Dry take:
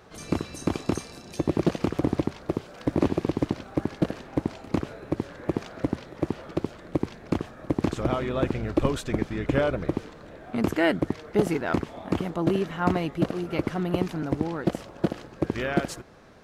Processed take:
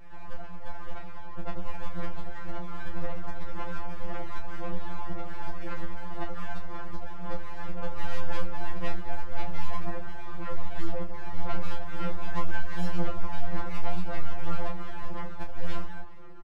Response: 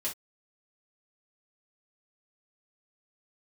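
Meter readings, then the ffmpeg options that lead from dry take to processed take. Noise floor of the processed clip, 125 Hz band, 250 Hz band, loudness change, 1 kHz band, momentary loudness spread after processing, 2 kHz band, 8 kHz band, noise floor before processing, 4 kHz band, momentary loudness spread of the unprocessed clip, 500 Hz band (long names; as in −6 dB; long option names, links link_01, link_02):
−28 dBFS, −7.5 dB, −15.0 dB, −11.0 dB, −4.0 dB, 7 LU, −6.0 dB, −13.0 dB, −46 dBFS, −8.0 dB, 7 LU, −12.5 dB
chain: -filter_complex "[0:a]afftfilt=real='re*between(b*sr/4096,230,1300)':imag='im*between(b*sr/4096,230,1300)':win_size=4096:overlap=0.75,acompressor=threshold=-26dB:ratio=12,alimiter=level_in=2dB:limit=-24dB:level=0:latency=1:release=44,volume=-2dB,dynaudnorm=framelen=420:gausssize=7:maxgain=7dB,aeval=exprs='abs(val(0))':channel_layout=same,aphaser=in_gain=1:out_gain=1:delay=1.3:decay=0.49:speed=1.9:type=sinusoidal,asoftclip=type=tanh:threshold=-23.5dB,asplit=2[link_01][link_02];[link_02]adelay=27,volume=-6dB[link_03];[link_01][link_03]amix=inputs=2:normalize=0,asplit=4[link_04][link_05][link_06][link_07];[link_05]adelay=191,afreqshift=-120,volume=-21dB[link_08];[link_06]adelay=382,afreqshift=-240,volume=-27.7dB[link_09];[link_07]adelay=573,afreqshift=-360,volume=-34.5dB[link_10];[link_04][link_08][link_09][link_10]amix=inputs=4:normalize=0,afftfilt=real='re*2.83*eq(mod(b,8),0)':imag='im*2.83*eq(mod(b,8),0)':win_size=2048:overlap=0.75,volume=2.5dB"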